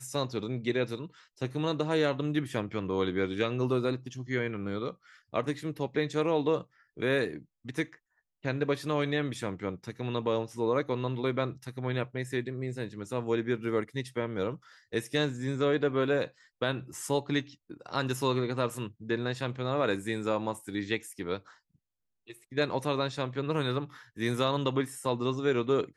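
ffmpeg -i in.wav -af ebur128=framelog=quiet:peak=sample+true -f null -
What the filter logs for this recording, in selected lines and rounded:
Integrated loudness:
  I:         -31.7 LUFS
  Threshold: -42.0 LUFS
Loudness range:
  LRA:         2.9 LU
  Threshold: -52.2 LUFS
  LRA low:   -33.7 LUFS
  LRA high:  -30.9 LUFS
Sample peak:
  Peak:      -13.4 dBFS
True peak:
  Peak:      -13.4 dBFS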